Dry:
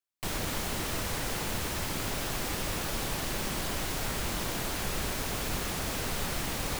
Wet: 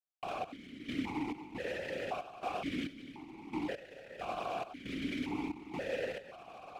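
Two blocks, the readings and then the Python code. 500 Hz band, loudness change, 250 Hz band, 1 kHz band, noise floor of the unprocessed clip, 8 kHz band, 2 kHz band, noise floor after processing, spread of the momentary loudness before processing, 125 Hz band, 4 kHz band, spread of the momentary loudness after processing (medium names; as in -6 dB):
-2.5 dB, -7.5 dB, -1.0 dB, -4.0 dB, -35 dBFS, -27.0 dB, -8.0 dB, -54 dBFS, 0 LU, -14.5 dB, -13.5 dB, 9 LU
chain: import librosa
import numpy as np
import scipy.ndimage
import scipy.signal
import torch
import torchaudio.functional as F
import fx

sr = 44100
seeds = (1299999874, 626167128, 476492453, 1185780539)

y = fx.envelope_sharpen(x, sr, power=1.5)
y = fx.step_gate(y, sr, bpm=68, pattern='.x..xx.xxx.xx..', floor_db=-12.0, edge_ms=4.5)
y = fx.vowel_held(y, sr, hz=1.9)
y = y * librosa.db_to_amplitude(11.0)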